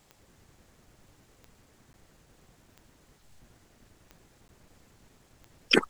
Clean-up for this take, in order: de-click; interpolate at 1.93/4.48, 10 ms

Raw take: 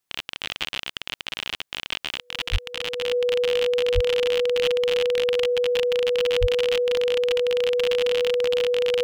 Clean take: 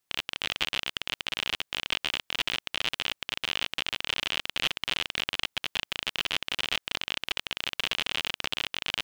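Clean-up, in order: notch 490 Hz, Q 30; de-plosive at 2.51/3.94/6.4

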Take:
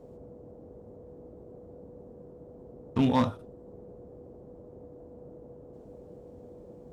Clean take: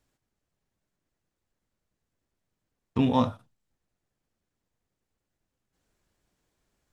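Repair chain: clip repair -17.5 dBFS; notch 490 Hz, Q 30; noise print and reduce 30 dB

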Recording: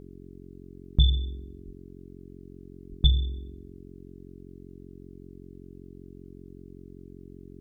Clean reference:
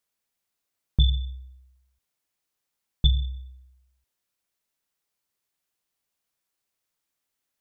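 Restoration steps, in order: de-hum 45.2 Hz, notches 9; 1.65–1.77 HPF 140 Hz 24 dB/oct; 2.89–3.01 HPF 140 Hz 24 dB/oct

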